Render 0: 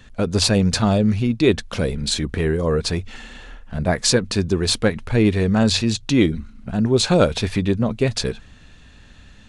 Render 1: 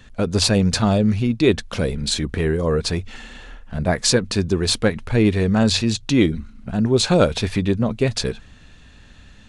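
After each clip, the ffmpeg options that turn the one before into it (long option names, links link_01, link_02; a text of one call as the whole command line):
ffmpeg -i in.wav -af anull out.wav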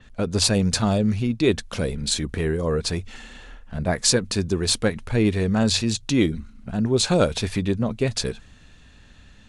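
ffmpeg -i in.wav -af "adynamicequalizer=threshold=0.0178:dfrequency=5600:dqfactor=0.7:tfrequency=5600:tqfactor=0.7:attack=5:release=100:ratio=0.375:range=3:mode=boostabove:tftype=highshelf,volume=-3.5dB" out.wav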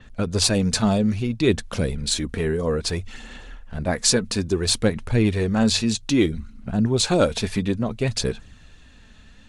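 ffmpeg -i in.wav -af "aphaser=in_gain=1:out_gain=1:delay=4.7:decay=0.32:speed=0.6:type=sinusoidal" out.wav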